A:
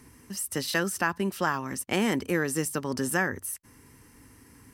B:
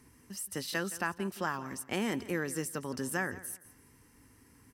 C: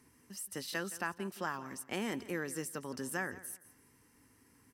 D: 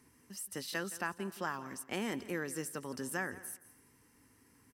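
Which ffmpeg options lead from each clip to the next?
ffmpeg -i in.wav -af "aecho=1:1:170|340|510:0.141|0.0396|0.0111,volume=-7dB" out.wav
ffmpeg -i in.wav -af "lowshelf=frequency=88:gain=-10,volume=-3.5dB" out.wav
ffmpeg -i in.wav -af "aecho=1:1:249:0.0631" out.wav

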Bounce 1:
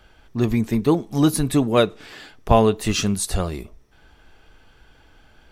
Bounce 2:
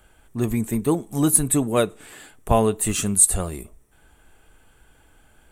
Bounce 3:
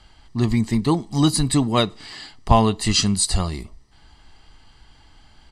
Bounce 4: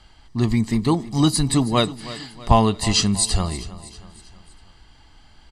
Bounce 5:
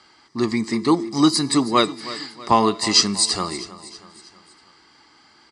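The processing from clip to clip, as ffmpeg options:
ffmpeg -i in.wav -af "highshelf=frequency=6600:width_type=q:width=3:gain=9.5,volume=-3dB" out.wav
ffmpeg -i in.wav -af "lowpass=frequency=4700:width_type=q:width=11,aecho=1:1:1:0.54,volume=2dB" out.wav
ffmpeg -i in.wav -af "aecho=1:1:320|640|960|1280:0.15|0.0733|0.0359|0.0176" out.wav
ffmpeg -i in.wav -af "highpass=260,equalizer=frequency=340:width_type=q:width=4:gain=6,equalizer=frequency=680:width_type=q:width=4:gain=-5,equalizer=frequency=1200:width_type=q:width=4:gain=6,equalizer=frequency=2100:width_type=q:width=4:gain=4,equalizer=frequency=3000:width_type=q:width=4:gain=-6,equalizer=frequency=5100:width_type=q:width=4:gain=7,lowpass=frequency=9000:width=0.5412,lowpass=frequency=9000:width=1.3066,bandreject=frequency=337.9:width_type=h:width=4,bandreject=frequency=675.8:width_type=h:width=4,bandreject=frequency=1013.7:width_type=h:width=4,bandreject=frequency=1351.6:width_type=h:width=4,bandreject=frequency=1689.5:width_type=h:width=4,bandreject=frequency=2027.4:width_type=h:width=4,bandreject=frequency=2365.3:width_type=h:width=4,bandreject=frequency=2703.2:width_type=h:width=4,bandreject=frequency=3041.1:width_type=h:width=4,bandreject=frequency=3379:width_type=h:width=4,bandreject=frequency=3716.9:width_type=h:width=4,bandreject=frequency=4054.8:width_type=h:width=4,bandreject=frequency=4392.7:width_type=h:width=4,bandreject=frequency=4730.6:width_type=h:width=4,bandreject=frequency=5068.5:width_type=h:width=4,bandreject=frequency=5406.4:width_type=h:width=4,bandreject=frequency=5744.3:width_type=h:width=4,bandreject=frequency=6082.2:width_type=h:width=4,bandreject=frequency=6420.1:width_type=h:width=4,bandreject=frequency=6758:width_type=h:width=4,bandreject=frequency=7095.9:width_type=h:width=4,bandreject=frequency=7433.8:width_type=h:width=4,bandreject=frequency=7771.7:width_type=h:width=4,bandreject=frequency=8109.6:width_type=h:width=4,bandreject=frequency=8447.5:width_type=h:width=4,bandreject=frequency=8785.4:width_type=h:width=4,bandreject=frequency=9123.3:width_type=h:width=4,bandreject=frequency=9461.2:width_type=h:width=4,bandreject=frequency=9799.1:width_type=h:width=4,bandreject=frequency=10137:width_type=h:width=4,bandreject=frequency=10474.9:width_type=h:width=4,bandreject=frequency=10812.8:width_type=h:width=4,bandreject=frequency=11150.7:width_type=h:width=4,bandreject=frequency=11488.6:width_type=h:width=4,bandreject=frequency=11826.5:width_type=h:width=4,bandreject=frequency=12164.4:width_type=h:width=4,bandreject=frequency=12502.3:width_type=h:width=4,volume=1.5dB" out.wav

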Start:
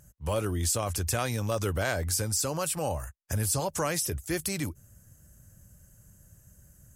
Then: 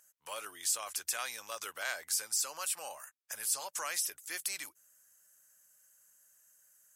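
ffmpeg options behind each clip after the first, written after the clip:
ffmpeg -i in.wav -af "highpass=1200,volume=-3dB" out.wav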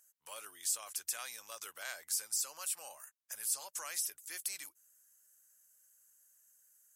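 ffmpeg -i in.wav -af "highshelf=frequency=5000:gain=7.5,volume=-8dB" out.wav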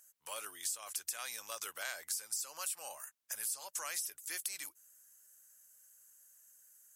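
ffmpeg -i in.wav -af "acompressor=threshold=-40dB:ratio=6,volume=4.5dB" out.wav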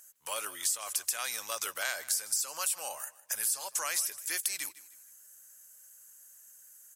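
ffmpeg -i in.wav -af "aecho=1:1:156|312|468:0.119|0.038|0.0122,volume=7.5dB" out.wav

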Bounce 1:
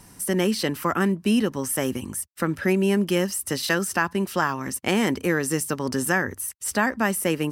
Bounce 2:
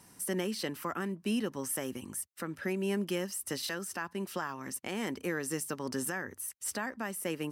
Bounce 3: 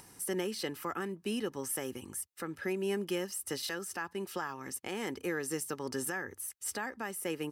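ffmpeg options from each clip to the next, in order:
ffmpeg -i in.wav -af "highpass=frequency=160:poles=1,alimiter=limit=-15.5dB:level=0:latency=1:release=390,volume=-7.5dB" out.wav
ffmpeg -i in.wav -af "aecho=1:1:2.4:0.35,acompressor=mode=upward:threshold=-49dB:ratio=2.5,volume=-1.5dB" out.wav

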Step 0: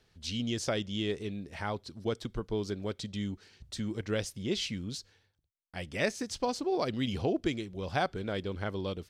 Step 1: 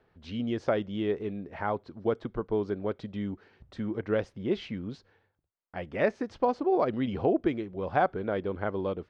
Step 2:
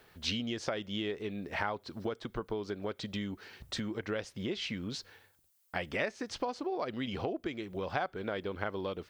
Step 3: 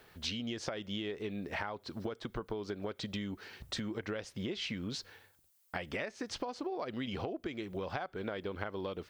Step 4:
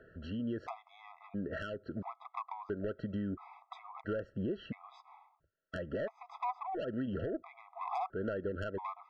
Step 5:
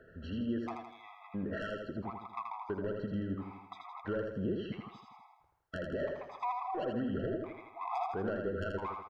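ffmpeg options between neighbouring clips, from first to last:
ffmpeg -i in.wav -af "lowpass=1300,lowshelf=frequency=200:gain=-11.5,volume=7.5dB" out.wav
ffmpeg -i in.wav -af "acompressor=threshold=-38dB:ratio=5,crystalizer=i=8.5:c=0,volume=2.5dB" out.wav
ffmpeg -i in.wav -af "acompressor=threshold=-35dB:ratio=6,volume=1dB" out.wav
ffmpeg -i in.wav -af "lowpass=frequency=1100:width_type=q:width=2.7,asoftclip=type=tanh:threshold=-31dB,afftfilt=real='re*gt(sin(2*PI*0.74*pts/sr)*(1-2*mod(floor(b*sr/1024/660),2)),0)':imag='im*gt(sin(2*PI*0.74*pts/sr)*(1-2*mod(floor(b*sr/1024/660),2)),0)':win_size=1024:overlap=0.75,volume=3.5dB" out.wav
ffmpeg -i in.wav -af "aecho=1:1:81|162|243|324|405|486:0.631|0.315|0.158|0.0789|0.0394|0.0197" out.wav

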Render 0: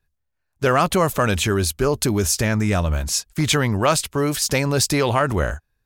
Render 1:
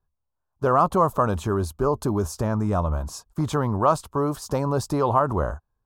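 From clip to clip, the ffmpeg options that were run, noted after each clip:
ffmpeg -i in.wav -af "highshelf=frequency=1500:width_type=q:width=3:gain=-11.5,volume=-4dB" out.wav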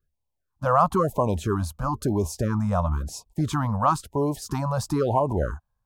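ffmpeg -i in.wav -af "afftfilt=real='re*(1-between(b*sr/1024,320*pow(1600/320,0.5+0.5*sin(2*PI*1*pts/sr))/1.41,320*pow(1600/320,0.5+0.5*sin(2*PI*1*pts/sr))*1.41))':imag='im*(1-between(b*sr/1024,320*pow(1600/320,0.5+0.5*sin(2*PI*1*pts/sr))/1.41,320*pow(1600/320,0.5+0.5*sin(2*PI*1*pts/sr))*1.41))':win_size=1024:overlap=0.75" out.wav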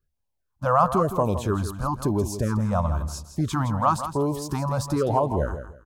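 ffmpeg -i in.wav -af "aecho=1:1:165|330|495:0.299|0.0687|0.0158" out.wav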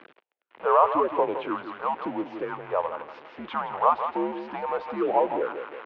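ffmpeg -i in.wav -af "aeval=exprs='val(0)+0.5*0.0282*sgn(val(0))':channel_layout=same,highpass=frequency=430:width_type=q:width=0.5412,highpass=frequency=430:width_type=q:width=1.307,lowpass=frequency=3000:width_type=q:width=0.5176,lowpass=frequency=3000:width_type=q:width=0.7071,lowpass=frequency=3000:width_type=q:width=1.932,afreqshift=-79" out.wav

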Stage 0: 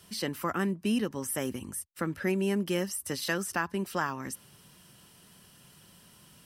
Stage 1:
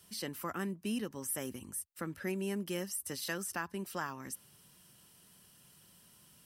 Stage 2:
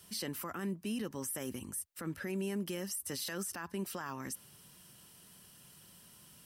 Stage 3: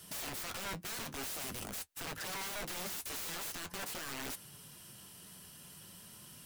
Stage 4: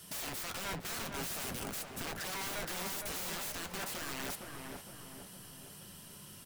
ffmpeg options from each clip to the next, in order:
ffmpeg -i in.wav -af "highshelf=frequency=6600:gain=7.5,volume=-8dB" out.wav
ffmpeg -i in.wav -af "alimiter=level_in=9dB:limit=-24dB:level=0:latency=1:release=31,volume=-9dB,volume=3.5dB" out.wav
ffmpeg -i in.wav -af "aeval=exprs='(mod(106*val(0)+1,2)-1)/106':channel_layout=same,flanger=delay=6.2:depth=6.4:regen=-49:speed=0.45:shape=triangular,volume=8.5dB" out.wav
ffmpeg -i in.wav -filter_complex "[0:a]asplit=2[link_01][link_02];[link_02]adelay=461,lowpass=frequency=1500:poles=1,volume=-3dB,asplit=2[link_03][link_04];[link_04]adelay=461,lowpass=frequency=1500:poles=1,volume=0.54,asplit=2[link_05][link_06];[link_06]adelay=461,lowpass=frequency=1500:poles=1,volume=0.54,asplit=2[link_07][link_08];[link_08]adelay=461,lowpass=frequency=1500:poles=1,volume=0.54,asplit=2[link_09][link_10];[link_10]adelay=461,lowpass=frequency=1500:poles=1,volume=0.54,asplit=2[link_11][link_12];[link_12]adelay=461,lowpass=frequency=1500:poles=1,volume=0.54,asplit=2[link_13][link_14];[link_14]adelay=461,lowpass=frequency=1500:poles=1,volume=0.54[link_15];[link_01][link_03][link_05][link_07][link_09][link_11][link_13][link_15]amix=inputs=8:normalize=0,volume=1dB" out.wav

